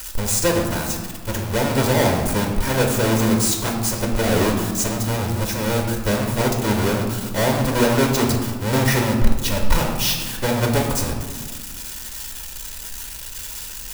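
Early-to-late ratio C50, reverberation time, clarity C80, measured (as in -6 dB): 4.5 dB, 1.6 s, 6.5 dB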